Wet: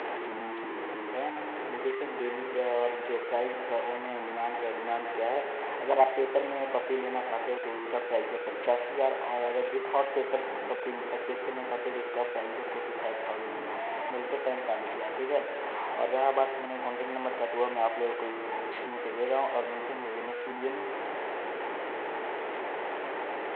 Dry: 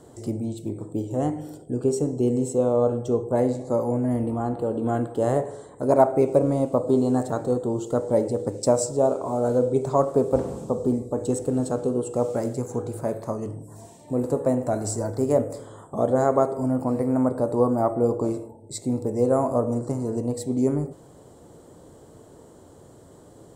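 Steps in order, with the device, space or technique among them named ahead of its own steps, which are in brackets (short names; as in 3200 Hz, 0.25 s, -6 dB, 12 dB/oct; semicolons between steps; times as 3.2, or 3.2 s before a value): digital answering machine (BPF 370–3000 Hz; delta modulation 16 kbps, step -23 dBFS; speaker cabinet 360–4300 Hz, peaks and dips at 390 Hz +4 dB, 840 Hz +9 dB, 1900 Hz +6 dB); gain -7.5 dB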